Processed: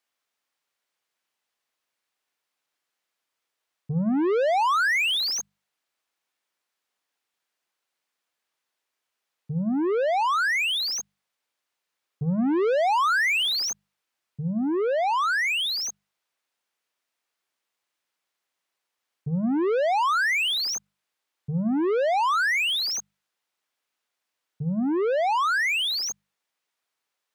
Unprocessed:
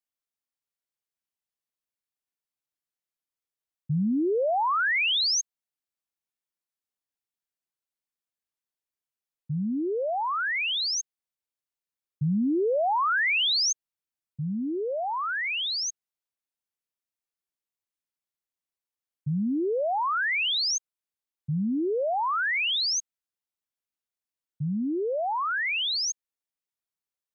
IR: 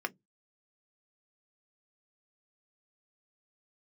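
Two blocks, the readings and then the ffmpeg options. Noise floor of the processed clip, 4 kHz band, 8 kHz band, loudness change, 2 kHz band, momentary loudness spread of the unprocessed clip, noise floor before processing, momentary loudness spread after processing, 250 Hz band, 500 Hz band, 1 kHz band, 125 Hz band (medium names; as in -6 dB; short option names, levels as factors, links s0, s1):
-84 dBFS, +0.5 dB, no reading, +2.5 dB, +3.0 dB, 10 LU, under -85 dBFS, 11 LU, +2.5 dB, +3.5 dB, +4.0 dB, +0.5 dB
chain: -filter_complex "[0:a]asplit=2[s0][s1];[s1]highpass=f=720:p=1,volume=10,asoftclip=type=tanh:threshold=0.0891[s2];[s0][s2]amix=inputs=2:normalize=0,lowpass=f=2800:p=1,volume=0.501,bandreject=f=50:t=h:w=6,bandreject=f=100:t=h:w=6,bandreject=f=150:t=h:w=6,bandreject=f=200:t=h:w=6,volume=1.33"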